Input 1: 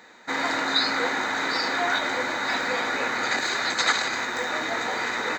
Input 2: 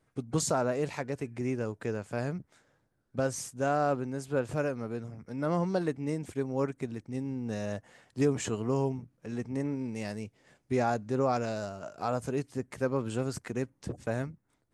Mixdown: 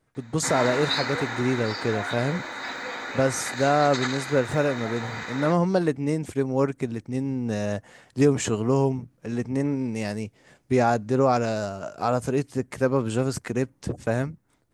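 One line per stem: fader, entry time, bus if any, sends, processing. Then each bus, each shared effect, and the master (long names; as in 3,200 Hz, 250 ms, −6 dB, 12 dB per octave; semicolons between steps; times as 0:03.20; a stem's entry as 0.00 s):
−4.5 dB, 0.15 s, no send, automatic ducking −9 dB, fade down 1.65 s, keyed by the second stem
+1.5 dB, 0.00 s, no send, no processing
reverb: not used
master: automatic gain control gain up to 6 dB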